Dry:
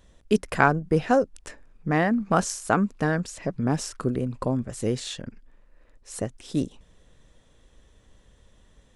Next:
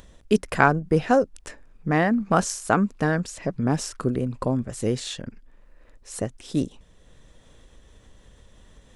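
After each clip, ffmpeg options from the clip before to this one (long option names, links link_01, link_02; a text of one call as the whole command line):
ffmpeg -i in.wav -af "acompressor=mode=upward:threshold=-45dB:ratio=2.5,volume=1.5dB" out.wav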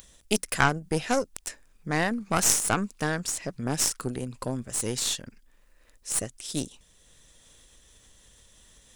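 ffmpeg -i in.wav -af "crystalizer=i=7:c=0,aeval=exprs='2.37*(cos(1*acos(clip(val(0)/2.37,-1,1)))-cos(1*PI/2))+0.266*(cos(8*acos(clip(val(0)/2.37,-1,1)))-cos(8*PI/2))':channel_layout=same,volume=-9dB" out.wav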